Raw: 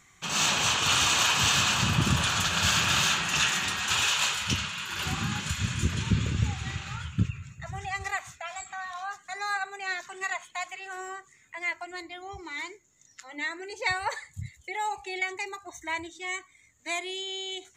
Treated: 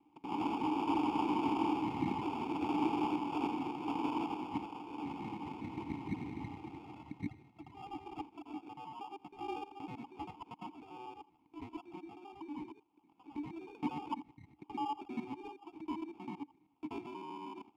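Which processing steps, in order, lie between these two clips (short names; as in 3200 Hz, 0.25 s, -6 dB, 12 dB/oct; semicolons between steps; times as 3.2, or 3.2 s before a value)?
local time reversal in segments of 79 ms; sample-rate reducer 2000 Hz, jitter 0%; vowel filter u; gain +3 dB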